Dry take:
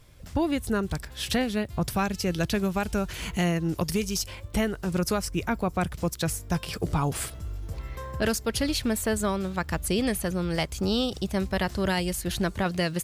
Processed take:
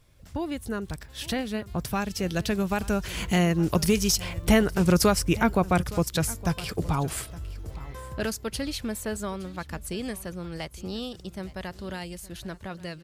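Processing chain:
source passing by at 0:04.69, 6 m/s, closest 6.7 metres
single-tap delay 865 ms −19 dB
level +6.5 dB

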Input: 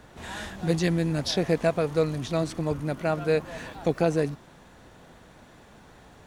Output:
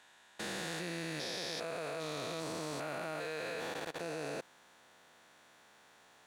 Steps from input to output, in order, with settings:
spectrum averaged block by block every 400 ms
high-pass filter 1,400 Hz 6 dB per octave
output level in coarse steps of 23 dB
level +6 dB

